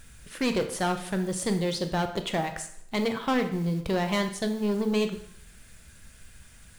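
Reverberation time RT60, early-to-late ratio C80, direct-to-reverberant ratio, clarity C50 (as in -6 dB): 0.65 s, 13.5 dB, 7.0 dB, 10.0 dB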